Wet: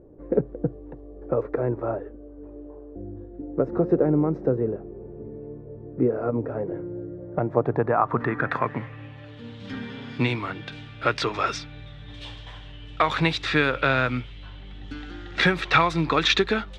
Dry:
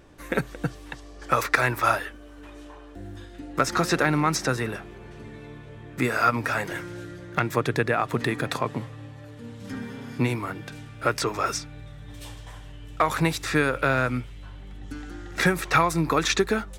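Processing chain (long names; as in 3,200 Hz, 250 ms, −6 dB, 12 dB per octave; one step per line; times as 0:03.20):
floating-point word with a short mantissa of 4 bits
low-pass filter sweep 460 Hz → 3,500 Hz, 0:07.11–0:09.39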